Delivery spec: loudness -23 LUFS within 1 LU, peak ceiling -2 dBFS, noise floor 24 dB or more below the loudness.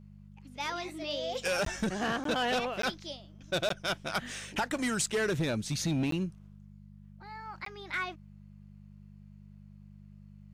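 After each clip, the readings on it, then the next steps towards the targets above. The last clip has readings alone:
dropouts 6; longest dropout 13 ms; hum 50 Hz; highest harmonic 200 Hz; hum level -49 dBFS; loudness -33.0 LUFS; peak level -22.0 dBFS; loudness target -23.0 LUFS
-> interpolate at 1.65/2.24/2.82/3.69/6.11/7.65 s, 13 ms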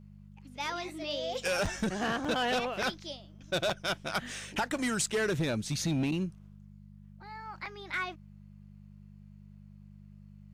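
dropouts 0; hum 50 Hz; highest harmonic 200 Hz; hum level -49 dBFS
-> de-hum 50 Hz, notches 4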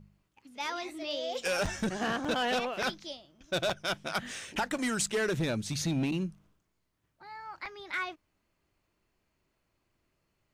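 hum not found; loudness -32.5 LUFS; peak level -18.0 dBFS; loudness target -23.0 LUFS
-> trim +9.5 dB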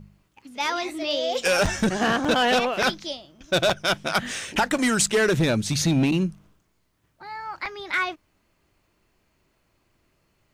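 loudness -23.5 LUFS; peak level -8.5 dBFS; noise floor -69 dBFS

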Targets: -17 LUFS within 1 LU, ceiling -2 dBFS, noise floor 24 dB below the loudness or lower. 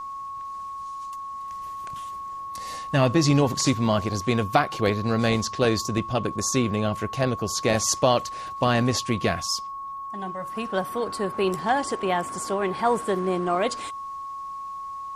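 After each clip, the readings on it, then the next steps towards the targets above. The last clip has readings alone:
steady tone 1.1 kHz; tone level -32 dBFS; loudness -25.5 LUFS; peak level -6.0 dBFS; loudness target -17.0 LUFS
-> band-stop 1.1 kHz, Q 30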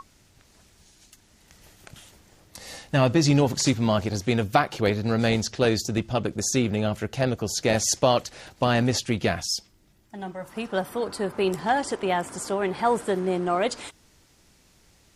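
steady tone not found; loudness -24.5 LUFS; peak level -6.5 dBFS; loudness target -17.0 LUFS
-> trim +7.5 dB; peak limiter -2 dBFS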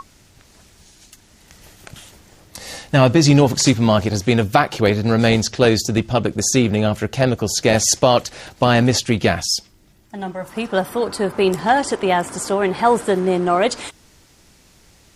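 loudness -17.5 LUFS; peak level -2.0 dBFS; noise floor -52 dBFS

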